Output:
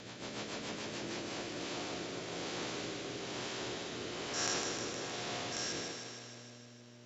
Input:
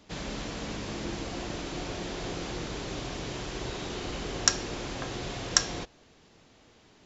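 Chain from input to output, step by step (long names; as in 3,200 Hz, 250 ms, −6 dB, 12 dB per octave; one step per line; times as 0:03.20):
spectrum averaged block by block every 200 ms
high-pass filter 94 Hz 12 dB per octave
low-shelf EQ 190 Hz −11.5 dB
transient designer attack −8 dB, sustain +8 dB
hum with harmonics 120 Hz, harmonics 5, −55 dBFS −5 dB per octave
rotating-speaker cabinet horn 7 Hz, later 1.1 Hz, at 0:00.84
feedback echo with a high-pass in the loop 155 ms, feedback 70%, high-pass 230 Hz, level −6 dB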